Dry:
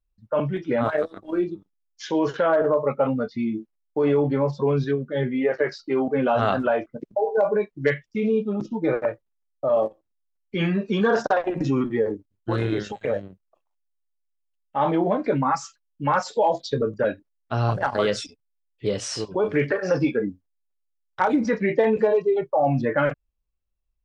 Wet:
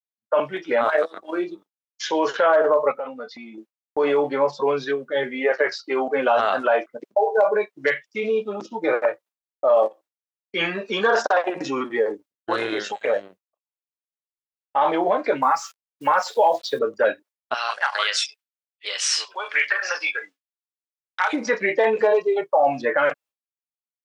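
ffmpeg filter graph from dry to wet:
ffmpeg -i in.wav -filter_complex "[0:a]asettb=1/sr,asplit=3[link_01][link_02][link_03];[link_01]atrim=end=2.914[link_04];[link_02]atrim=start=2.91:end=3.58,asetpts=PTS-STARTPTS,afade=type=in:duration=0.004:curve=qsin,afade=type=out:start_time=0.666:duration=0.004:curve=qsin,aecho=1:1:4:0.36,atrim=end_sample=29547,acompressor=threshold=-32dB:ratio=4:attack=3.2:release=140:knee=1:detection=peak[link_05];[link_03]atrim=start=3.576[link_06];[link_04][link_05]acrossfade=duration=0.004:curve1=hsin:curve2=qsin[link_07];[link_07][link_06]acrossfade=duration=0.004:curve1=qsin:curve2=hsin,asettb=1/sr,asplit=3[link_08][link_09][link_10];[link_08]atrim=end=15.424[link_11];[link_09]atrim=start=15.42:end=16.79,asetpts=PTS-STARTPTS,afade=type=in:duration=0.004:curve=qsin,afade=type=out:start_time=1.366:duration=0.004:curve=qsin,highshelf=frequency=6400:gain=-10.5,acrusher=bits=8:mix=0:aa=0.5[link_12];[link_10]atrim=start=16.786[link_13];[link_11][link_12]acrossfade=duration=0.004:curve1=hsin:curve2=qsin[link_14];[link_14][link_13]acrossfade=duration=0.004:curve1=qsin:curve2=hsin,asettb=1/sr,asplit=3[link_15][link_16][link_17];[link_15]atrim=end=17.544[link_18];[link_16]atrim=start=17.54:end=21.33,asetpts=PTS-STARTPTS,afade=type=in:duration=0.004:curve=qsin,afade=type=out:start_time=3.786:duration=0.004:curve=qsin,highpass=1300,equalizer=frequency=2600:width=0.68:gain=5[link_19];[link_17]atrim=start=21.326[link_20];[link_18][link_19]acrossfade=duration=0.004:curve1=hsin:curve2=qsin[link_21];[link_21][link_20]acrossfade=duration=0.004:curve1=qsin:curve2=hsin,highpass=590,agate=range=-33dB:threshold=-49dB:ratio=3:detection=peak,alimiter=level_in=15.5dB:limit=-1dB:release=50:level=0:latency=1,volume=-8dB" out.wav

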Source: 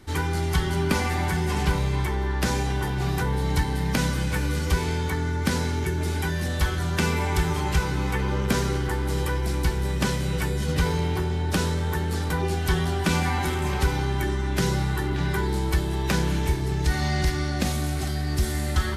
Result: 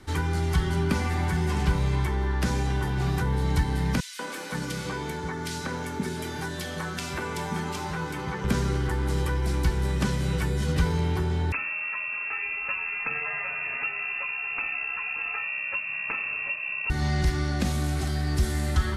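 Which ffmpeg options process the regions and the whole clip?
ffmpeg -i in.wav -filter_complex "[0:a]asettb=1/sr,asplit=3[link_01][link_02][link_03];[link_01]atrim=end=4.004[link_04];[link_02]atrim=start=4:end=8.44,asetpts=PTS-STARTPTS,afade=type=in:duration=0.004:curve=qsin,afade=type=out:start_time=4.436:duration=0.004:curve=qsin,highpass=180,aeval=exprs='sgn(val(0))*max(abs(val(0))-0.00178,0)':channel_layout=same,acrossover=split=280|2200[link_05][link_06][link_07];[link_06]adelay=190[link_08];[link_05]adelay=520[link_09];[link_09][link_08][link_07]amix=inputs=3:normalize=0,atrim=end_sample=195804[link_10];[link_03]atrim=start=8.436[link_11];[link_04][link_10]acrossfade=duration=0.004:curve1=hsin:curve2=qsin[link_12];[link_12][link_11]acrossfade=duration=0.004:curve1=qsin:curve2=hsin,asettb=1/sr,asplit=3[link_13][link_14][link_15];[link_13]atrim=end=11.524[link_16];[link_14]atrim=start=11.52:end=16.9,asetpts=PTS-STARTPTS,afade=type=in:duration=0.004:curve=qsin,afade=type=out:start_time=5.376:duration=0.004:curve=qsin,highpass=51,lowpass=frequency=2400:width_type=q:width=0.5098,lowpass=frequency=2400:width_type=q:width=0.6013,lowpass=frequency=2400:width_type=q:width=0.9,lowpass=frequency=2400:width_type=q:width=2.563,afreqshift=-2800[link_17];[link_15]atrim=start=16.896[link_18];[link_16][link_17]acrossfade=duration=0.004:curve1=hsin:curve2=qsin[link_19];[link_19][link_18]acrossfade=duration=0.004:curve1=qsin:curve2=hsin,lowpass=12000,equalizer=frequency=1300:width=1.5:gain=2.5,acrossover=split=300[link_20][link_21];[link_21]acompressor=threshold=-34dB:ratio=2[link_22];[link_20][link_22]amix=inputs=2:normalize=0" out.wav

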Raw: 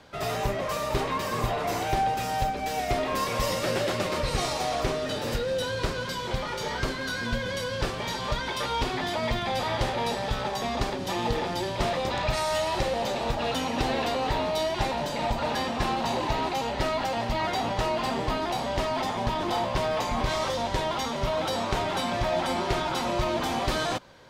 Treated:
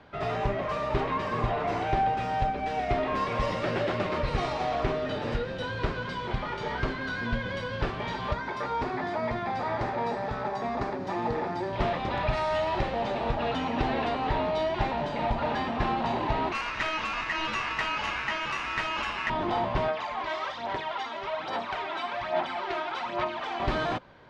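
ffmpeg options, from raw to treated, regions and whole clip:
ffmpeg -i in.wav -filter_complex "[0:a]asettb=1/sr,asplit=3[link_01][link_02][link_03];[link_01]atrim=end=8.334[link_04];[link_02]atrim=start=8.33:end=11.73,asetpts=PTS-STARTPTS,afade=type=in:duration=0.004:curve=qsin,afade=type=out:start_time=3.396:duration=0.004:curve=qsin,highpass=frequency=150:poles=1,equalizer=frequency=3100:width_type=o:width=0.61:gain=-11.5[link_05];[link_03]atrim=start=11.726[link_06];[link_04][link_05]acrossfade=duration=0.004:curve1=hsin:curve2=qsin[link_07];[link_07][link_06]acrossfade=duration=0.004:curve1=qsin:curve2=hsin,asettb=1/sr,asplit=3[link_08][link_09][link_10];[link_08]atrim=end=16.524[link_11];[link_09]atrim=start=16.52:end=19.3,asetpts=PTS-STARTPTS,afade=type=in:duration=0.004:curve=qsin,afade=type=out:start_time=2.776:duration=0.004:curve=qsin,highshelf=frequency=2600:gain=11.5,aeval=exprs='val(0)*sin(2*PI*1900*n/s)':channel_layout=same[link_12];[link_10]atrim=start=19.296[link_13];[link_11][link_12]acrossfade=duration=0.004:curve1=hsin:curve2=qsin[link_14];[link_14][link_13]acrossfade=duration=0.004:curve1=qsin:curve2=hsin,asettb=1/sr,asplit=3[link_15][link_16][link_17];[link_15]atrim=end=19.884[link_18];[link_16]atrim=start=19.88:end=23.6,asetpts=PTS-STARTPTS,afade=type=in:duration=0.004:curve=qsin,afade=type=out:start_time=3.716:duration=0.004:curve=qsin,highpass=frequency=1200:poles=1,highshelf=frequency=8400:gain=-11,aphaser=in_gain=1:out_gain=1:delay=3.1:decay=0.58:speed=1.2:type=sinusoidal[link_19];[link_17]atrim=start=23.596[link_20];[link_18][link_19]acrossfade=duration=0.004:curve1=hsin:curve2=qsin[link_21];[link_21][link_20]acrossfade=duration=0.004:curve1=qsin:curve2=hsin,lowpass=2600,bandreject=frequency=520:width=12" out.wav

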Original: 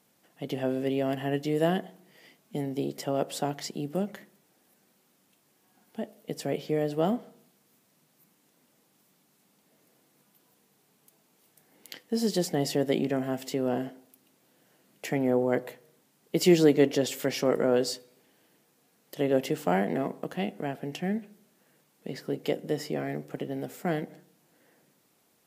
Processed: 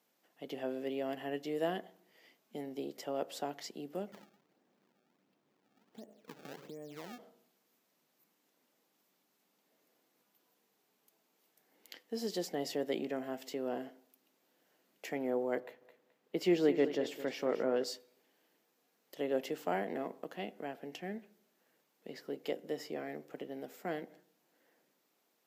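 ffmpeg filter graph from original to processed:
ffmpeg -i in.wav -filter_complex "[0:a]asettb=1/sr,asplit=3[link_01][link_02][link_03];[link_01]atrim=end=4.124[link_04];[link_02]atrim=start=4.12:end=7.19,asetpts=PTS-STARTPTS,afade=type=in:duration=0.004:curve=qsin,afade=type=out:start_time=3.066:duration=0.004:curve=qsin,aemphasis=mode=reproduction:type=riaa,acompressor=threshold=-34dB:ratio=6:attack=3.2:release=140:knee=1:detection=peak,acrusher=samples=25:mix=1:aa=0.000001:lfo=1:lforange=40:lforate=1.4[link_05];[link_03]atrim=start=7.186[link_06];[link_04][link_05]acrossfade=duration=0.004:curve1=hsin:curve2=qsin[link_07];[link_07][link_06]acrossfade=duration=0.004:curve1=qsin:curve2=hsin,asettb=1/sr,asplit=3[link_08][link_09][link_10];[link_08]atrim=end=15.604[link_11];[link_09]atrim=start=15.6:end=17.84,asetpts=PTS-STARTPTS,afade=type=in:duration=0.004:curve=qsin,afade=type=out:start_time=2.236:duration=0.004:curve=qsin,bass=frequency=250:gain=2,treble=frequency=4000:gain=-9,aecho=1:1:214|428|642:0.251|0.0653|0.017,atrim=end_sample=98784[link_12];[link_10]atrim=start=17.836[link_13];[link_11][link_12]acrossfade=duration=0.004:curve1=hsin:curve2=qsin[link_14];[link_14][link_13]acrossfade=duration=0.004:curve1=qsin:curve2=hsin,highpass=280,equalizer=frequency=9400:width_type=o:width=0.52:gain=-7.5,volume=-7.5dB" out.wav

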